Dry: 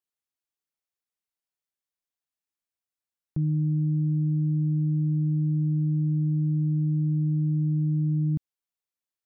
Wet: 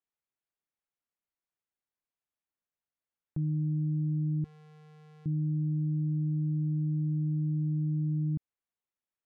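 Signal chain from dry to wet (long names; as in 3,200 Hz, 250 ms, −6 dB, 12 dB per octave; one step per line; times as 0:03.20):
adaptive Wiener filter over 9 samples
brickwall limiter −26 dBFS, peak gain reduction 5.5 dB
0:04.44–0:05.26: tube saturation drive 54 dB, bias 0.3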